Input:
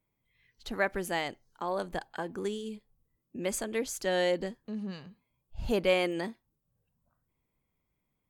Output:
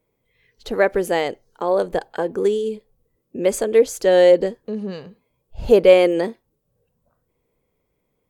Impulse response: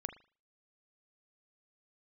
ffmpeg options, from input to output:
-af "equalizer=frequency=470:width=1.8:gain=13.5,volume=6.5dB"

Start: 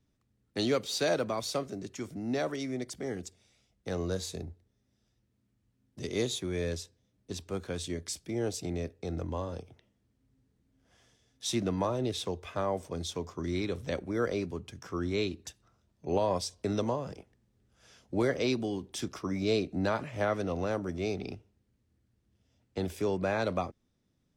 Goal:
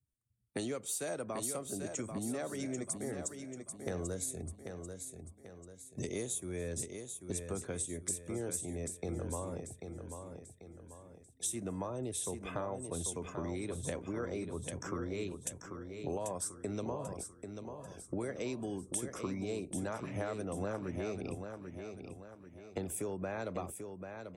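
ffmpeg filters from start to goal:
ffmpeg -i in.wav -filter_complex "[0:a]afftdn=noise_reduction=27:noise_floor=-56,highshelf=frequency=6600:width_type=q:width=3:gain=13,acompressor=threshold=-42dB:ratio=6,asplit=2[link_01][link_02];[link_02]aecho=0:1:790|1580|2370|3160|3950:0.447|0.188|0.0788|0.0331|0.0139[link_03];[link_01][link_03]amix=inputs=2:normalize=0,volume=5.5dB" out.wav

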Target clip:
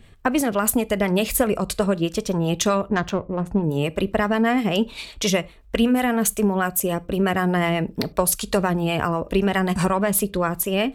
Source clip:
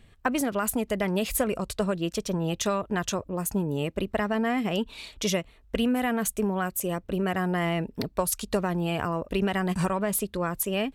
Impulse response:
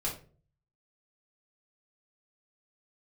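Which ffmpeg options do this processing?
-filter_complex "[0:a]acrossover=split=540[link_01][link_02];[link_01]aeval=exprs='val(0)*(1-0.5/2+0.5/2*cos(2*PI*7.9*n/s))':channel_layout=same[link_03];[link_02]aeval=exprs='val(0)*(1-0.5/2-0.5/2*cos(2*PI*7.9*n/s))':channel_layout=same[link_04];[link_03][link_04]amix=inputs=2:normalize=0,asettb=1/sr,asplit=3[link_05][link_06][link_07];[link_05]atrim=end=2.884[link_08];[link_06]atrim=start=2.88:end=3.64,asetpts=PTS-STARTPTS,afade=type=in:duration=0.004:curve=qsin,afade=type=out:start_time=0.756:duration=0.004:curve=qsin,adynamicsmooth=sensitivity=2:basefreq=1200[link_09];[link_07]atrim=start=3.636[link_10];[link_08][link_09]acrossfade=duration=0.004:curve1=hsin:curve2=qsin[link_11];[link_11][link_10]acrossfade=duration=0.004:curve1=qsin:curve2=hsin,asplit=2[link_12][link_13];[1:a]atrim=start_sample=2205,atrim=end_sample=3969,adelay=13[link_14];[link_13][link_14]afir=irnorm=-1:irlink=0,volume=-22.5dB[link_15];[link_12][link_15]amix=inputs=2:normalize=0,volume=8.5dB"

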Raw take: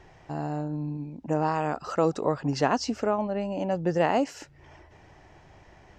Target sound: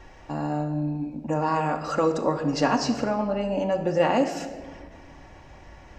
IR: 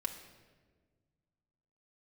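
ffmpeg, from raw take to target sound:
-filter_complex "[0:a]asplit=2[link_01][link_02];[link_02]acompressor=threshold=-31dB:ratio=6,volume=-2dB[link_03];[link_01][link_03]amix=inputs=2:normalize=0,equalizer=frequency=180:width=5.8:gain=-7.5[link_04];[1:a]atrim=start_sample=2205[link_05];[link_04][link_05]afir=irnorm=-1:irlink=0"

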